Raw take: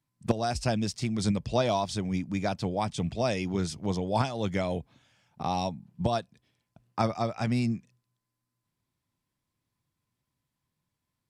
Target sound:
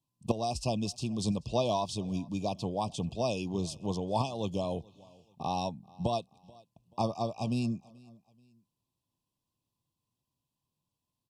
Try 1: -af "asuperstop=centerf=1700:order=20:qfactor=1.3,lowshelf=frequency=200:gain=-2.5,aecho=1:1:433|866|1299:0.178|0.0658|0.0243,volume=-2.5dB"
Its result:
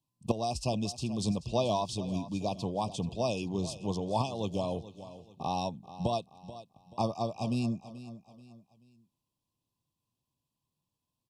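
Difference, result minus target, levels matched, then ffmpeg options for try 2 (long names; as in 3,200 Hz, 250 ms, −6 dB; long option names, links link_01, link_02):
echo-to-direct +9.5 dB
-af "asuperstop=centerf=1700:order=20:qfactor=1.3,lowshelf=frequency=200:gain=-2.5,aecho=1:1:433|866:0.0596|0.022,volume=-2.5dB"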